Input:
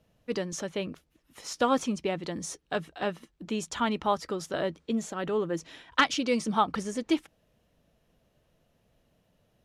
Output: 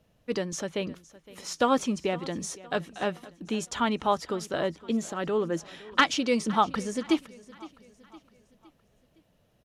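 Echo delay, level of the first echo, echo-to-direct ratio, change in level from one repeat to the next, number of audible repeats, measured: 513 ms, −20.0 dB, −19.0 dB, −6.5 dB, 3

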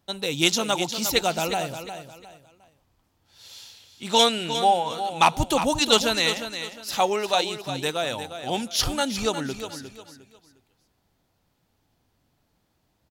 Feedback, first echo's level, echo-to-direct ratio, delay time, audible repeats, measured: 30%, −10.0 dB, −9.5 dB, 356 ms, 3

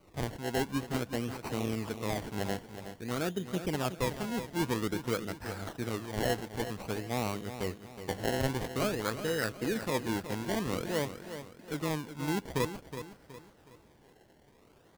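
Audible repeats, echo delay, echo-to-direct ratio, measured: 3, 369 ms, −10.0 dB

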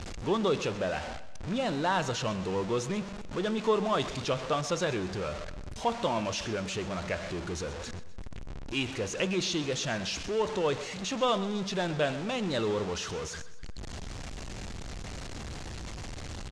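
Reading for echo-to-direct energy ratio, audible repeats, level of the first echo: −14.5 dB, 3, −15.5 dB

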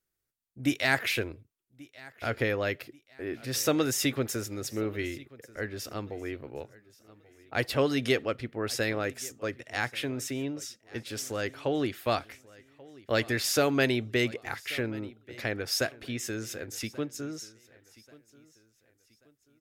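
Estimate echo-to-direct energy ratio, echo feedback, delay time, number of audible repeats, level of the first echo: −21.5 dB, 36%, 1,135 ms, 2, −22.0 dB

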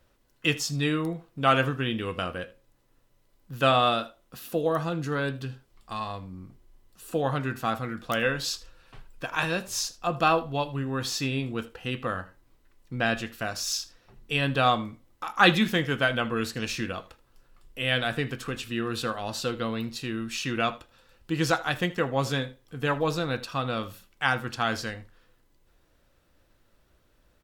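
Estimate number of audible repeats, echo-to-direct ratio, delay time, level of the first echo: 1, −20.0 dB, 79 ms, −20.0 dB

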